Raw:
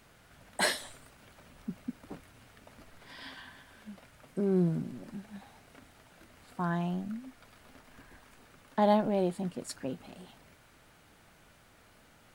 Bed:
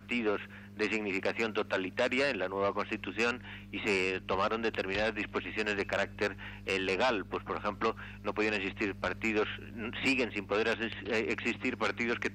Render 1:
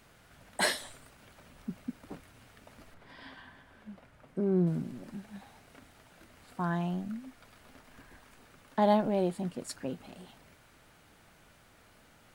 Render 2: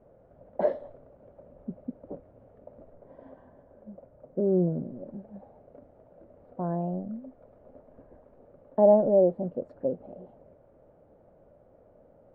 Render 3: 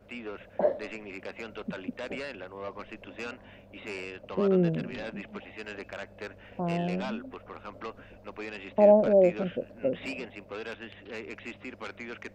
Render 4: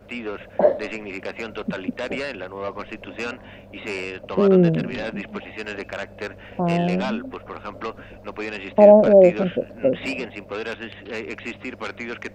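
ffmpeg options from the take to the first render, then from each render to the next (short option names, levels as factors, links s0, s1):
-filter_complex "[0:a]asettb=1/sr,asplit=3[s0][s1][s2];[s0]atrim=end=2.944[s3];[s1]atrim=start=2.94:end=4.67,asetpts=PTS-STARTPTS,afade=t=in:d=0.004:c=qsin,afade=t=out:st=1.726:d=0.004:c=qsin,highshelf=f=2900:g=-11.5[s4];[s2]atrim=start=4.666[s5];[s3][s4]acrossfade=d=0.004:c1=hsin:c2=qsin[s6];[s6][s5]acrossfade=d=0.004:c1=qsin:c2=hsin"
-af "lowpass=f=560:t=q:w=4.9"
-filter_complex "[1:a]volume=0.376[s0];[0:a][s0]amix=inputs=2:normalize=0"
-af "volume=2.82,alimiter=limit=0.891:level=0:latency=1"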